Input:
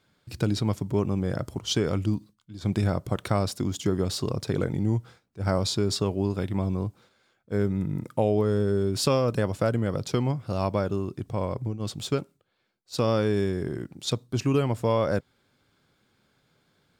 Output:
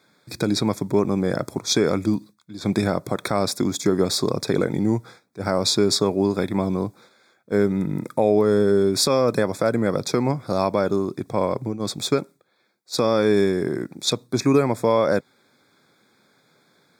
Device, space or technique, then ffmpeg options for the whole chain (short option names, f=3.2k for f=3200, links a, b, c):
PA system with an anti-feedback notch: -af "highpass=200,asuperstop=centerf=2900:order=20:qfactor=3.9,alimiter=limit=-16.5dB:level=0:latency=1:release=125,volume=8.5dB"